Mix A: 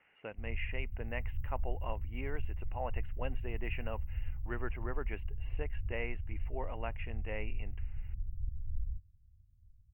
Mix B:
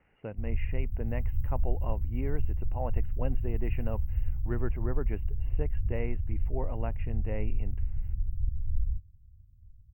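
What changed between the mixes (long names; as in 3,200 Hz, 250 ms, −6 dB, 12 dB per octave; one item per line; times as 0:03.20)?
speech: add spectral tilt −4.5 dB per octave
background +8.0 dB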